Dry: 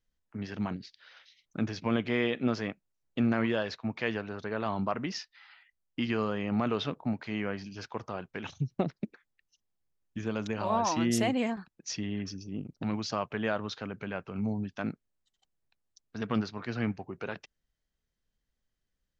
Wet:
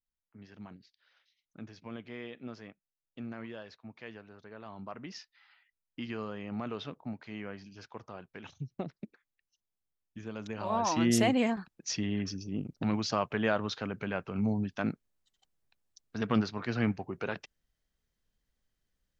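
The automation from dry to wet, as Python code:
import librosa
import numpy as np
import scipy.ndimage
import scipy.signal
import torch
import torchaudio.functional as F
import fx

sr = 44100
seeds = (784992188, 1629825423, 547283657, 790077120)

y = fx.gain(x, sr, db=fx.line((4.71, -14.5), (5.17, -8.0), (10.33, -8.0), (11.1, 2.0)))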